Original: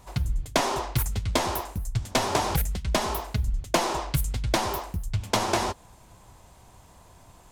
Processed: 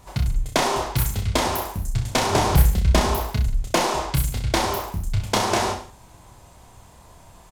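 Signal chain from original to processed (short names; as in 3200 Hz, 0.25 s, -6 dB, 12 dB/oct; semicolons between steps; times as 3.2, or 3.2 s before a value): 2.29–3.21 low shelf 240 Hz +8 dB; reverse bouncing-ball echo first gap 30 ms, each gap 1.1×, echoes 5; gain +2 dB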